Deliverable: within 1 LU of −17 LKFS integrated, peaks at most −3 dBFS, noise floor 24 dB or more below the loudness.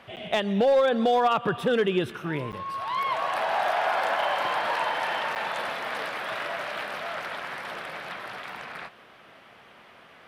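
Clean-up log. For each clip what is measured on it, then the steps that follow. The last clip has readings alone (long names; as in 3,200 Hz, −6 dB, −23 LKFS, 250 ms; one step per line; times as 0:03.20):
share of clipped samples 0.4%; peaks flattened at −15.5 dBFS; number of dropouts 3; longest dropout 8.8 ms; integrated loudness −27.0 LKFS; sample peak −15.5 dBFS; target loudness −17.0 LKFS
→ clipped peaks rebuilt −15.5 dBFS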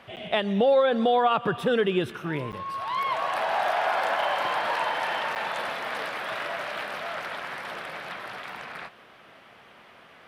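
share of clipped samples 0.0%; number of dropouts 3; longest dropout 8.8 ms
→ repair the gap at 0:00.16/0:02.52/0:05.35, 8.8 ms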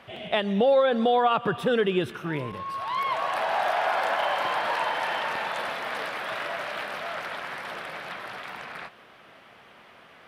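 number of dropouts 0; integrated loudness −27.0 LKFS; sample peak −11.0 dBFS; target loudness −17.0 LKFS
→ level +10 dB
brickwall limiter −3 dBFS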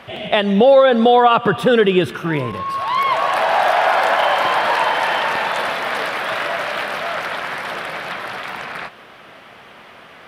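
integrated loudness −17.0 LKFS; sample peak −3.0 dBFS; background noise floor −42 dBFS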